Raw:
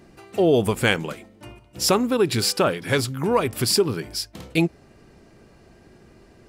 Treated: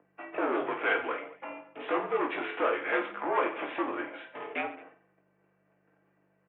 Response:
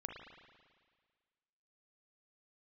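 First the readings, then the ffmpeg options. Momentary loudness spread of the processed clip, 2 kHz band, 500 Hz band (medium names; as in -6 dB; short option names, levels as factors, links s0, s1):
13 LU, -4.0 dB, -10.0 dB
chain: -filter_complex "[0:a]agate=range=0.0631:threshold=0.00501:ratio=16:detection=peak,aeval=exprs='val(0)+0.00891*(sin(2*PI*50*n/s)+sin(2*PI*2*50*n/s)/2+sin(2*PI*3*50*n/s)/3+sin(2*PI*4*50*n/s)/4+sin(2*PI*5*50*n/s)/5)':c=same,aecho=1:1:5.5:0.39,asplit=2[s0][s1];[s1]acompressor=threshold=0.0282:ratio=6,volume=1.26[s2];[s0][s2]amix=inputs=2:normalize=0,aresample=8000,asoftclip=type=tanh:threshold=0.0841,aresample=44100,highpass=f=310:t=q:w=0.5412,highpass=f=310:t=q:w=1.307,lowpass=f=3100:t=q:w=0.5176,lowpass=f=3100:t=q:w=0.7071,lowpass=f=3100:t=q:w=1.932,afreqshift=-63,acrossover=split=400 2400:gain=0.0891 1 0.178[s3][s4][s5];[s3][s4][s5]amix=inputs=3:normalize=0,aecho=1:1:20|48|87.2|142.1|218.9:0.631|0.398|0.251|0.158|0.1"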